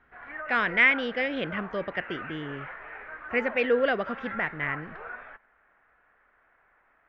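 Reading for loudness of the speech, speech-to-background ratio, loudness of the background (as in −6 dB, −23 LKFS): −27.0 LKFS, 12.0 dB, −39.0 LKFS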